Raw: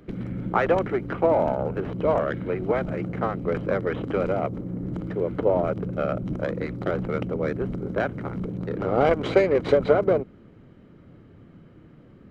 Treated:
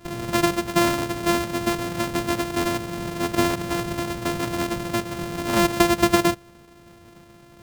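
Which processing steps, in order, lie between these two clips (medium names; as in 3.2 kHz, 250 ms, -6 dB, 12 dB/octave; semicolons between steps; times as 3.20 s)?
sorted samples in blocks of 128 samples; time stretch by phase-locked vocoder 0.62×; trim +1.5 dB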